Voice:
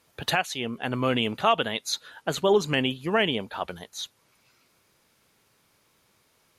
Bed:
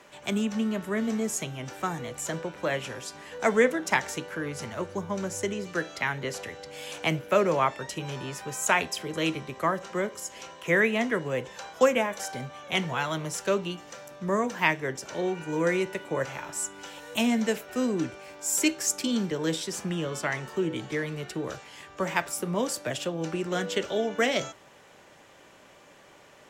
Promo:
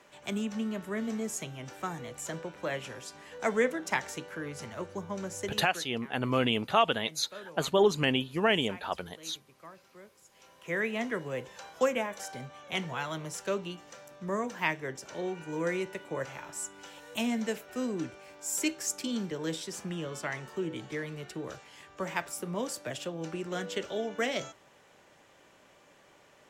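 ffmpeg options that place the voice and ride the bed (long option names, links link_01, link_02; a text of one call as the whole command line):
ffmpeg -i stem1.wav -i stem2.wav -filter_complex "[0:a]adelay=5300,volume=-2.5dB[link_01];[1:a]volume=12dB,afade=type=out:start_time=5.41:duration=0.52:silence=0.125893,afade=type=in:start_time=10.26:duration=0.77:silence=0.133352[link_02];[link_01][link_02]amix=inputs=2:normalize=0" out.wav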